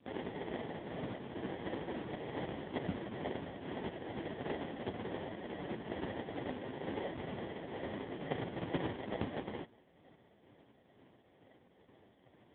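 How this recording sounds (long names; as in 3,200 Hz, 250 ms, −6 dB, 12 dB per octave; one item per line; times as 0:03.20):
tremolo triangle 2.2 Hz, depth 40%
aliases and images of a low sample rate 1,300 Hz, jitter 0%
AMR narrowband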